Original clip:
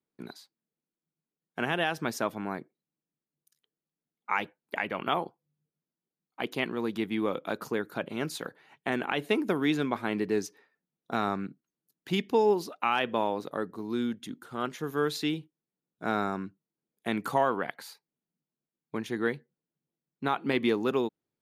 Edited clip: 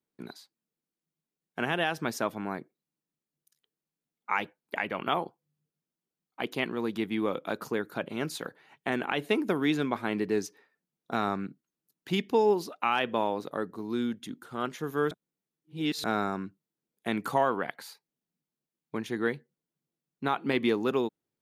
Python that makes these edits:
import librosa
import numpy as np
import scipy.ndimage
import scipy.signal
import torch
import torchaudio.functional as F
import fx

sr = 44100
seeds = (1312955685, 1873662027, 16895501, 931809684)

y = fx.edit(x, sr, fx.reverse_span(start_s=15.11, length_s=0.93), tone=tone)